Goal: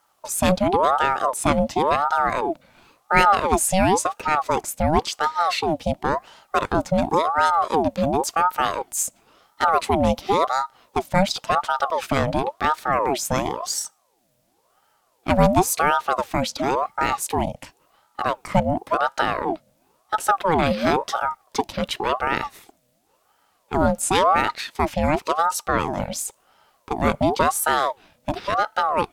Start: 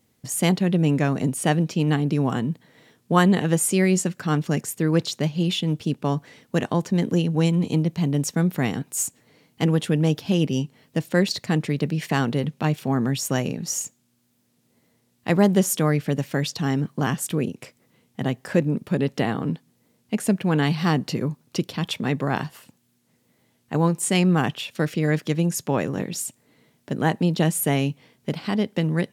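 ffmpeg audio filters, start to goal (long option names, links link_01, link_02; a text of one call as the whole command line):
ffmpeg -i in.wav -af "aeval=exprs='val(0)*sin(2*PI*730*n/s+730*0.5/0.94*sin(2*PI*0.94*n/s))':channel_layout=same,volume=4dB" out.wav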